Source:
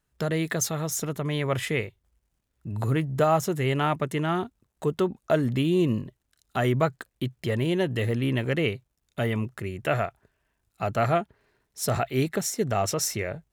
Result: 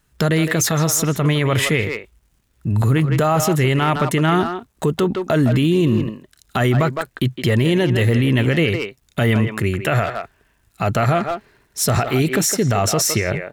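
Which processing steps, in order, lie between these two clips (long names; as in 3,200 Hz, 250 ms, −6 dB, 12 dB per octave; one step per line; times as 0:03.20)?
parametric band 590 Hz −4 dB 1.4 octaves
far-end echo of a speakerphone 160 ms, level −9 dB
boost into a limiter +21.5 dB
level −7.5 dB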